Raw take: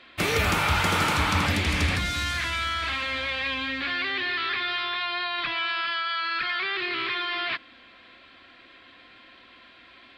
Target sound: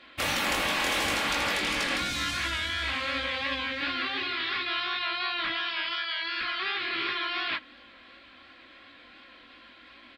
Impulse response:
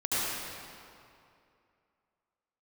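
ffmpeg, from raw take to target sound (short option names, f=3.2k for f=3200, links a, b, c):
-af "flanger=delay=17.5:depth=6.9:speed=2.8,afftfilt=real='re*lt(hypot(re,im),0.126)':imag='im*lt(hypot(re,im),0.126)':win_size=1024:overlap=0.75,aecho=1:1:3.6:0.34,volume=2dB"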